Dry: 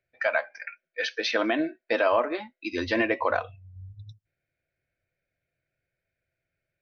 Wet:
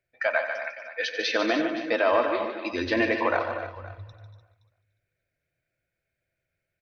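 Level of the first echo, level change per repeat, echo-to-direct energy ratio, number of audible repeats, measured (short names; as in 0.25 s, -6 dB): -12.5 dB, no steady repeat, -4.5 dB, 8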